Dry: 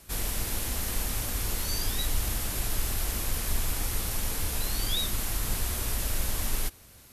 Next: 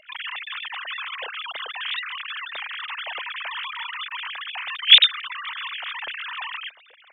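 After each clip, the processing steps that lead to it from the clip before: sine-wave speech; high shelf 2100 Hz +9 dB; gain -4 dB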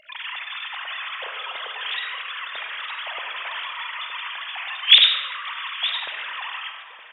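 echo 0.916 s -14 dB; reverb RT60 2.0 s, pre-delay 10 ms, DRR 2.5 dB; gain -1 dB

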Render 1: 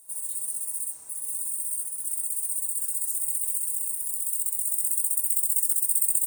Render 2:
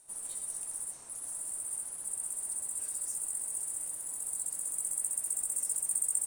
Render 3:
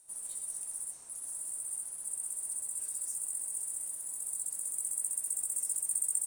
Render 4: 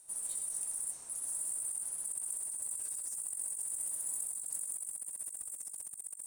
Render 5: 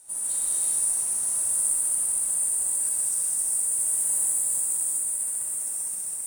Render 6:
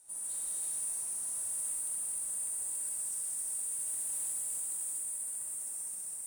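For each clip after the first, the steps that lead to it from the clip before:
LPF 6600 Hz 12 dB/oct; gain +2.5 dB
high shelf 5000 Hz +6.5 dB; gain -6 dB
negative-ratio compressor -39 dBFS, ratio -0.5
non-linear reverb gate 0.46 s flat, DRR -7 dB; gain +5.5 dB
soft clip -22.5 dBFS, distortion -14 dB; gain -8.5 dB

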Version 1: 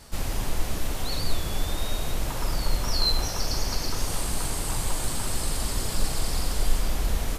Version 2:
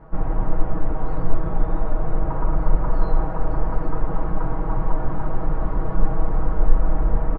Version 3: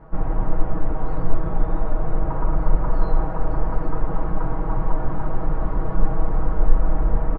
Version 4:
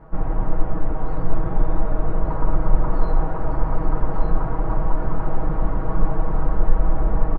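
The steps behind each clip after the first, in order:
LPF 1300 Hz 24 dB/oct; comb 6.3 ms, depth 77%; gain +4.5 dB
nothing audible
echo 1.184 s -5.5 dB

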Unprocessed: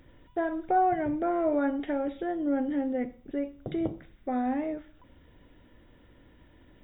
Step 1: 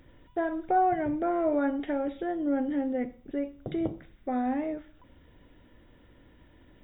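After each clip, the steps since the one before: nothing audible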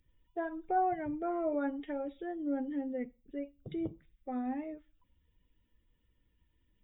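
per-bin expansion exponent 1.5; gain -5 dB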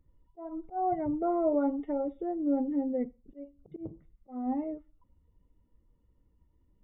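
auto swell 0.254 s; polynomial smoothing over 65 samples; gain +6 dB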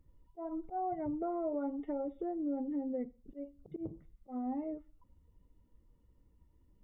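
compressor 3:1, threshold -37 dBFS, peak gain reduction 10.5 dB; gain +1 dB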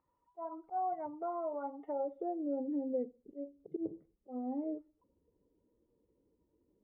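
band-pass sweep 1000 Hz -> 420 Hz, 1.61–2.68; gain +7 dB

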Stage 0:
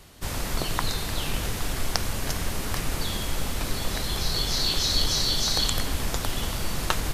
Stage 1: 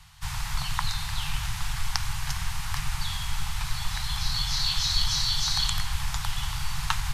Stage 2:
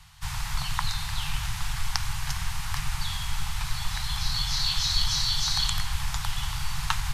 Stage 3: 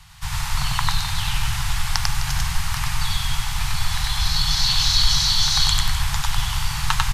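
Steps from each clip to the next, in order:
elliptic band-stop 150–850 Hz, stop band 40 dB; high shelf 11000 Hz -11.5 dB
nothing audible
loudspeakers at several distances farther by 33 m -1 dB, 88 m -12 dB; gain +4.5 dB

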